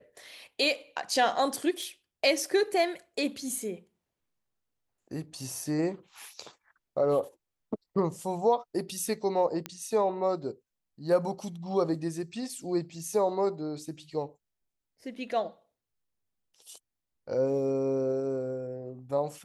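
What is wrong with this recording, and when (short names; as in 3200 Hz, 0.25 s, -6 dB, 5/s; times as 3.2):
1.83 pop
9.66 pop -18 dBFS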